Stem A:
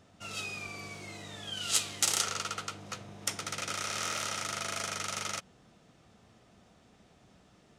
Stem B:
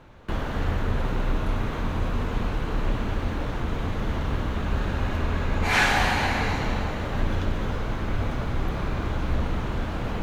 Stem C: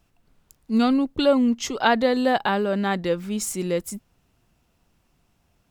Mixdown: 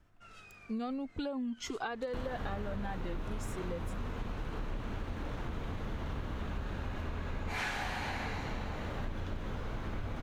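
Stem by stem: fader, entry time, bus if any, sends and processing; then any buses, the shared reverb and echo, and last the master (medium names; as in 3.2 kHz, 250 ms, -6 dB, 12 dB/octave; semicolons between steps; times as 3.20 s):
-15.0 dB, 0.00 s, bus A, no send, peaking EQ 1.6 kHz +11.5 dB 0.85 oct; compression, threshold -32 dBFS, peak gain reduction 10.5 dB
-2.0 dB, 1.85 s, no bus, no send, none
+1.0 dB, 0.00 s, bus A, no send, Shepard-style flanger rising 0.63 Hz
bus A: 0.0 dB, treble shelf 3.1 kHz -9.5 dB; compression, threshold -24 dBFS, peak gain reduction 6.5 dB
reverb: none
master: compression 4:1, threshold -36 dBFS, peak gain reduction 14.5 dB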